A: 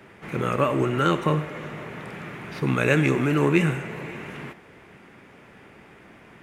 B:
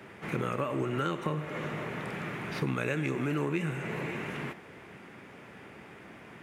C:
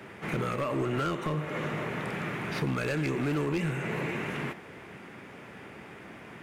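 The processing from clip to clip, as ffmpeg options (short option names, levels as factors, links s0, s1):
-af "highpass=70,acompressor=threshold=0.0398:ratio=6"
-af "volume=23.7,asoftclip=hard,volume=0.0422,volume=1.41"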